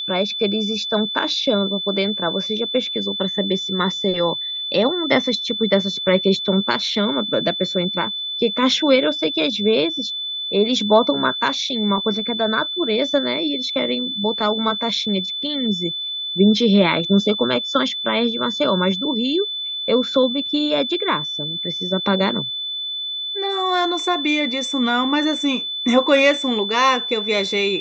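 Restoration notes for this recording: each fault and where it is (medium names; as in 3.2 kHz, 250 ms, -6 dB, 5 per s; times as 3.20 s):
whine 3.5 kHz -24 dBFS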